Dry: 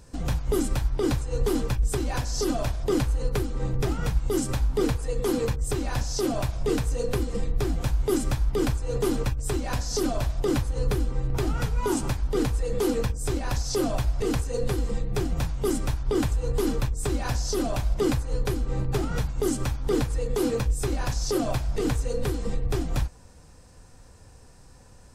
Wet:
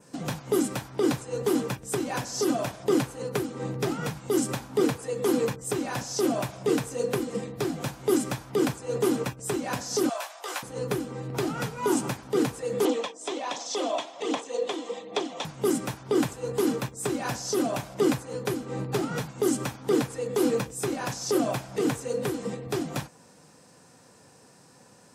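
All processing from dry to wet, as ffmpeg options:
ffmpeg -i in.wav -filter_complex "[0:a]asettb=1/sr,asplit=3[link_01][link_02][link_03];[link_01]atrim=end=10.094[link_04];[link_02]atrim=start=10.09:end=10.63,asetpts=PTS-STARTPTS,afade=type=in:duration=0.004:curve=qsin,afade=type=out:start_time=0.536:duration=0.004:curve=qsin,highpass=frequency=700:width=0.5412,highpass=frequency=700:width=1.3066,asplit=2[link_05][link_06];[link_06]adelay=16,volume=-5dB[link_07];[link_05][link_07]amix=inputs=2:normalize=0,atrim=end_sample=23814[link_08];[link_03]atrim=start=10.626[link_09];[link_04][link_08]acrossfade=duration=0.004:curve1=hsin:curve2=qsin[link_10];[link_10][link_09]acrossfade=duration=0.004:curve1=qsin:curve2=hsin,asettb=1/sr,asplit=3[link_11][link_12][link_13];[link_11]atrim=end=12.854[link_14];[link_12]atrim=start=12.85:end=15.45,asetpts=PTS-STARTPTS,afade=type=in:duration=0.004:curve=qsin,afade=type=out:start_time=2.596:duration=0.004:curve=qsin,aphaser=in_gain=1:out_gain=1:delay=3.1:decay=0.35:speed=1.3:type=sinusoidal,highpass=frequency=300:width=0.5412,highpass=frequency=300:width=1.3066,equalizer=frequency=370:width_type=q:width=4:gain=-7,equalizer=frequency=670:width_type=q:width=4:gain=3,equalizer=frequency=1000:width_type=q:width=4:gain=3,equalizer=frequency=1500:width_type=q:width=4:gain=-8,equalizer=frequency=3400:width_type=q:width=4:gain=9,equalizer=frequency=4800:width_type=q:width=4:gain=-4,lowpass=frequency=7100:width=0.5412,lowpass=frequency=7100:width=1.3066[link_15];[link_13]atrim=start=15.446[link_16];[link_14][link_15]acrossfade=duration=0.004:curve1=hsin:curve2=qsin[link_17];[link_17][link_16]acrossfade=duration=0.004:curve1=qsin:curve2=hsin,highpass=frequency=150:width=0.5412,highpass=frequency=150:width=1.3066,adynamicequalizer=threshold=0.00178:dfrequency=4400:dqfactor=2.2:tfrequency=4400:tqfactor=2.2:attack=5:release=100:ratio=0.375:range=2:mode=cutabove:tftype=bell,volume=1.5dB" out.wav

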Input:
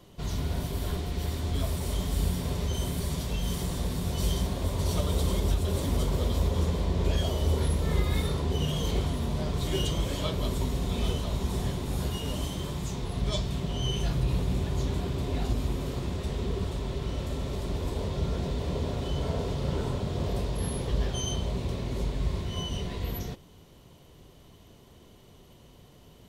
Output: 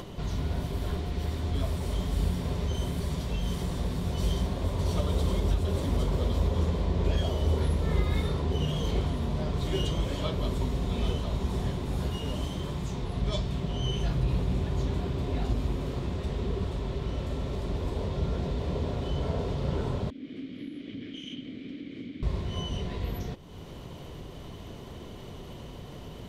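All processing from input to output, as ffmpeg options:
ffmpeg -i in.wav -filter_complex "[0:a]asettb=1/sr,asplit=3[link_01][link_02][link_03];[link_01]atrim=end=20.104[link_04];[link_02]atrim=start=20.1:end=22.23,asetpts=PTS-STARTPTS,afade=type=in:duration=0.004:curve=qsin,afade=type=out:start_time=2.126:duration=0.004:curve=qsin,aeval=exprs='abs(val(0))':channel_layout=same,asplit=3[link_05][link_06][link_07];[link_05]bandpass=frequency=270:width_type=q:width=8,volume=0dB[link_08];[link_06]bandpass=frequency=2290:width_type=q:width=8,volume=-6dB[link_09];[link_07]bandpass=frequency=3010:width_type=q:width=8,volume=-9dB[link_10];[link_08][link_09][link_10]amix=inputs=3:normalize=0[link_11];[link_03]atrim=start=22.226[link_12];[link_04][link_11]acrossfade=duration=0.004:curve1=hsin:curve2=qsin[link_13];[link_13][link_12]acrossfade=duration=0.004:curve1=qsin:curve2=hsin,highshelf=frequency=5900:gain=-11.5,acompressor=mode=upward:threshold=-30dB:ratio=2.5" out.wav

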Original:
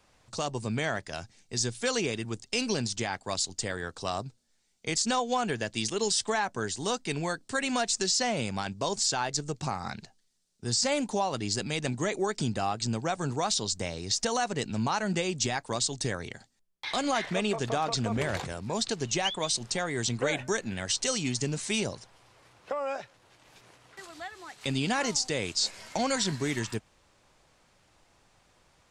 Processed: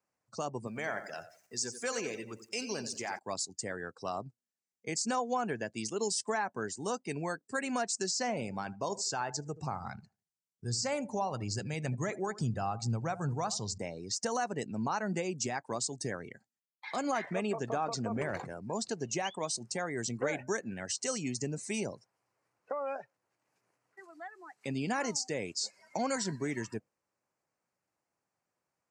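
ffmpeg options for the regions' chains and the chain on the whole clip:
ffmpeg -i in.wav -filter_complex "[0:a]asettb=1/sr,asplit=3[link_01][link_02][link_03];[link_01]atrim=end=0.674[link_04];[link_02]atrim=start=0.67:end=3.19,asetpts=PTS-STARTPTS,afade=type=in:duration=0.004:curve=qsin,afade=type=out:start_time=2.516:duration=0.004:curve=qsin,aeval=exprs='val(0)+0.5*0.00944*sgn(val(0))':channel_layout=same,lowshelf=frequency=370:gain=-10,aecho=1:1:88|176|264|352|440|528:0.316|0.164|0.0855|0.0445|0.0231|0.012,atrim=end_sample=111132[link_05];[link_03]atrim=start=3.186[link_06];[link_04][link_05]acrossfade=duration=0.004:curve1=hsin:curve2=qsin[link_07];[link_07][link_06]acrossfade=duration=0.004:curve1=qsin:curve2=hsin,asettb=1/sr,asplit=3[link_08][link_09][link_10];[link_08]atrim=end=8.114[link_11];[link_09]atrim=start=8.11:end=13.78,asetpts=PTS-STARTPTS,afade=type=in:duration=0.004:curve=qsin,afade=type=out:start_time=5.666:duration=0.004:curve=qsin,acrossover=split=8100[link_12][link_13];[link_13]acompressor=threshold=-42dB:ratio=4:attack=1:release=60[link_14];[link_12][link_14]amix=inputs=2:normalize=0,asubboost=boost=8.5:cutoff=99,asplit=2[link_15][link_16];[link_16]adelay=77,lowpass=frequency=2200:poles=1,volume=-15dB,asplit=2[link_17][link_18];[link_18]adelay=77,lowpass=frequency=2200:poles=1,volume=0.38,asplit=2[link_19][link_20];[link_20]adelay=77,lowpass=frequency=2200:poles=1,volume=0.38[link_21];[link_15][link_17][link_19][link_21]amix=inputs=4:normalize=0,atrim=end_sample=250047[link_22];[link_10]atrim=start=13.776[link_23];[link_11][link_22]acrossfade=duration=0.004:curve1=hsin:curve2=qsin[link_24];[link_24][link_23]acrossfade=duration=0.004:curve1=qsin:curve2=hsin,highpass=140,afftdn=noise_reduction=17:noise_floor=-41,equalizer=frequency=3500:width=2.5:gain=-14.5,volume=-3.5dB" out.wav

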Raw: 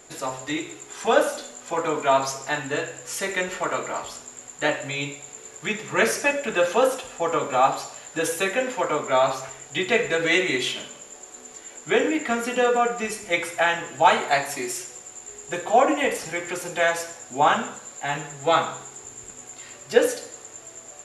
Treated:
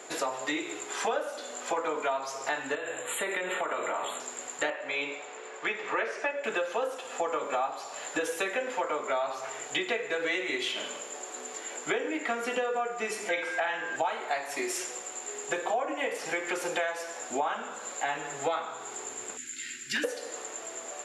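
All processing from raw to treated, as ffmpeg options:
ffmpeg -i in.wav -filter_complex "[0:a]asettb=1/sr,asplit=3[link_01][link_02][link_03];[link_01]atrim=end=2.754[link_04];[link_02]atrim=start=2.75:end=4.2,asetpts=PTS-STARTPTS,afade=type=in:duration=0.004:curve=qsin,afade=type=out:start_time=1.446:duration=0.004:curve=qsin,asuperstop=centerf=5400:order=12:qfactor=1.8,acompressor=threshold=-30dB:ratio=4:attack=3.2:release=140:knee=1:detection=peak[link_05];[link_03]atrim=start=4.196[link_06];[link_04][link_05]acrossfade=duration=0.004:curve1=hsin:curve2=qsin[link_07];[link_07][link_06]acrossfade=duration=0.004:curve1=qsin:curve2=hsin,asettb=1/sr,asplit=3[link_08][link_09][link_10];[link_08]atrim=end=4.704[link_11];[link_09]atrim=start=4.7:end=6.44,asetpts=PTS-STARTPTS,afade=type=in:duration=0.004:curve=qsin,afade=type=out:start_time=1.736:duration=0.004:curve=qsin,lowpass=frequency=8900:width=0.5412,lowpass=frequency=8900:width=1.3066,bass=frequency=250:gain=-13,treble=frequency=4000:gain=-12[link_12];[link_10]atrim=start=6.436[link_13];[link_11][link_12]acrossfade=duration=0.004:curve1=hsin:curve2=qsin[link_14];[link_14][link_13]acrossfade=duration=0.004:curve1=qsin:curve2=hsin,asettb=1/sr,asplit=3[link_15][link_16][link_17];[link_15]atrim=end=13.294[link_18];[link_16]atrim=start=13.29:end=13.96,asetpts=PTS-STARTPTS,afade=type=in:duration=0.004:curve=qsin,afade=type=out:start_time=0.666:duration=0.004:curve=qsin,lowpass=6500,aeval=exprs='val(0)+0.0224*sin(2*PI*1600*n/s)':channel_layout=same,asplit=2[link_19][link_20];[link_20]adelay=48,volume=-6dB[link_21];[link_19][link_21]amix=inputs=2:normalize=0,atrim=end_sample=29547[link_22];[link_17]atrim=start=13.956[link_23];[link_18][link_22]acrossfade=duration=0.004:curve1=hsin:curve2=qsin[link_24];[link_24][link_23]acrossfade=duration=0.004:curve1=qsin:curve2=hsin,asettb=1/sr,asplit=3[link_25][link_26][link_27];[link_25]atrim=end=19.374[link_28];[link_26]atrim=start=19.37:end=20.04,asetpts=PTS-STARTPTS,afade=type=in:duration=0.004:curve=qsin,afade=type=out:start_time=0.666:duration=0.004:curve=qsin,asuperstop=centerf=700:order=12:qfactor=0.58,asoftclip=type=hard:threshold=-24dB,asplit=2[link_29][link_30];[link_30]adelay=35,volume=-11.5dB[link_31];[link_29][link_31]amix=inputs=2:normalize=0,atrim=end_sample=29547[link_32];[link_27]atrim=start=20.036[link_33];[link_28][link_32]acrossfade=duration=0.004:curve1=hsin:curve2=qsin[link_34];[link_34][link_33]acrossfade=duration=0.004:curve1=qsin:curve2=hsin,highpass=360,highshelf=frequency=5200:gain=-9.5,acompressor=threshold=-35dB:ratio=8,volume=7dB" out.wav

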